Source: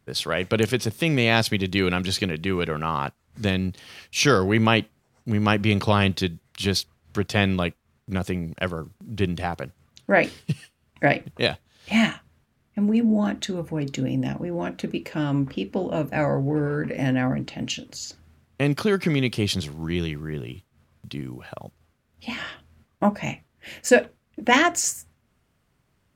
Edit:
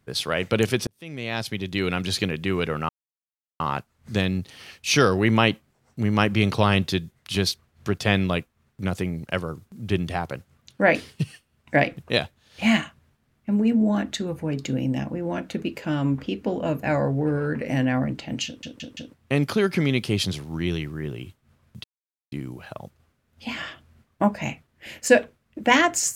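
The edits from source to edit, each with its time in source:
0.87–2.22 s: fade in
2.89 s: insert silence 0.71 s
17.75 s: stutter in place 0.17 s, 4 plays
21.13 s: insert silence 0.48 s

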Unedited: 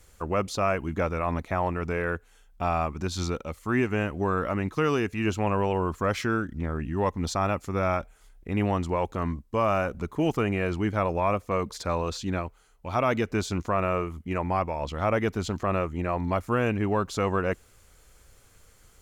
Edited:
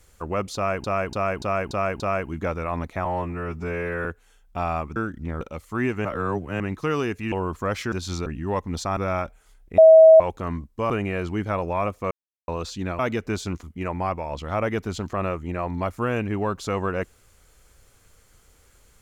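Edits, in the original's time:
0.55–0.84 s: loop, 6 plays
1.60–2.10 s: stretch 2×
3.01–3.35 s: swap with 6.31–6.76 s
3.99–4.54 s: reverse
5.26–5.71 s: delete
7.47–7.72 s: delete
8.53–8.95 s: bleep 642 Hz -6.5 dBFS
9.65–10.37 s: delete
11.58–11.95 s: mute
12.46–13.04 s: delete
13.68–14.13 s: delete

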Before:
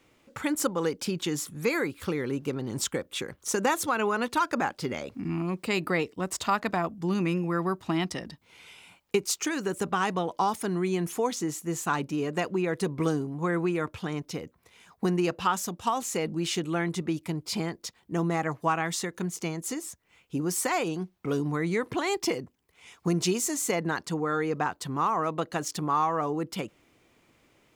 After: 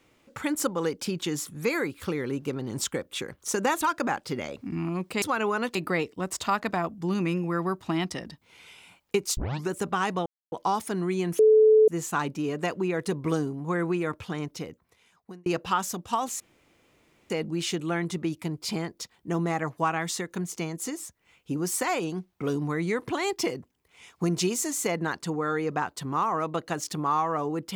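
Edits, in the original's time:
3.81–4.34 s: move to 5.75 s
9.37 s: tape start 0.32 s
10.26 s: insert silence 0.26 s
11.13–11.62 s: bleep 434 Hz -13.5 dBFS
14.25–15.20 s: fade out
16.14 s: insert room tone 0.90 s

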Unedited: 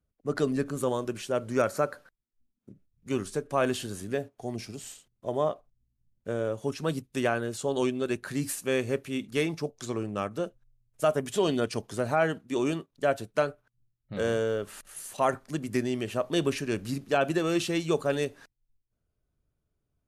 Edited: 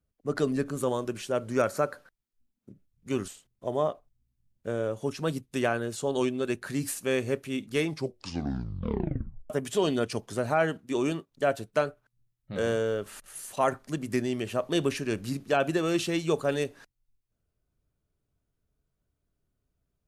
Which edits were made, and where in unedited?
3.28–4.89 s: delete
9.48 s: tape stop 1.63 s

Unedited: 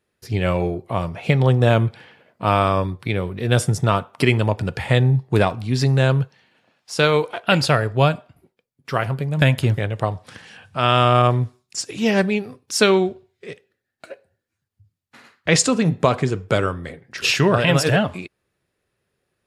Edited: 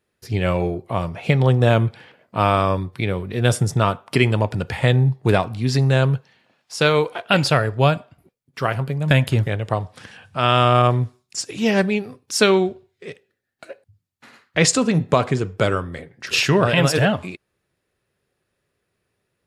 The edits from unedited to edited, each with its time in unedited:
shrink pauses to 70%

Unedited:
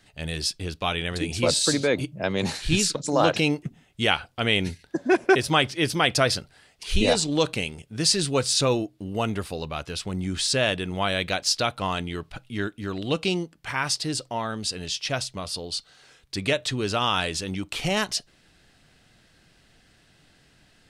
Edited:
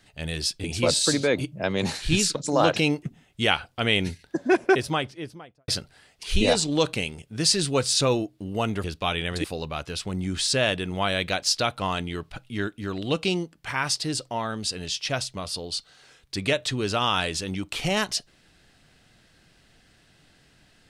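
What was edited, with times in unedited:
0.64–1.24 s: move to 9.44 s
5.07–6.28 s: studio fade out

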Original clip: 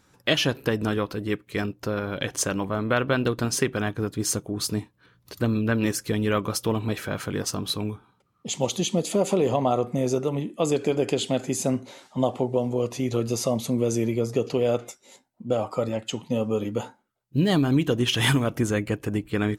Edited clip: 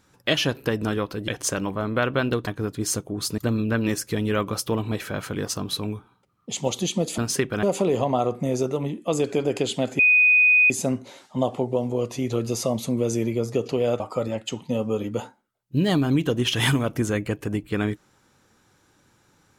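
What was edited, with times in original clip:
1.28–2.22 s: delete
3.41–3.86 s: move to 9.15 s
4.77–5.35 s: delete
11.51 s: add tone 2.49 kHz -13 dBFS 0.71 s
14.81–15.61 s: delete

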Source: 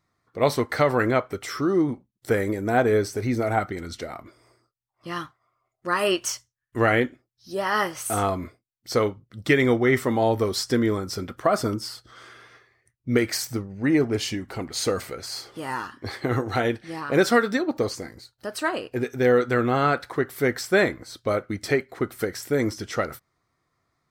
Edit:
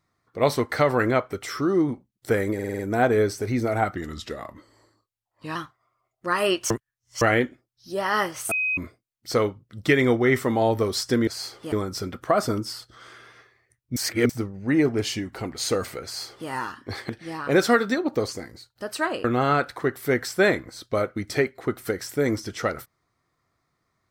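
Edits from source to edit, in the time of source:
2.54 s: stutter 0.05 s, 6 plays
3.71–5.16 s: speed 91%
6.31–6.82 s: reverse
8.12–8.38 s: bleep 2.52 kHz -21.5 dBFS
13.12–13.45 s: reverse
15.20–15.65 s: copy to 10.88 s
16.25–16.72 s: delete
18.87–19.58 s: delete

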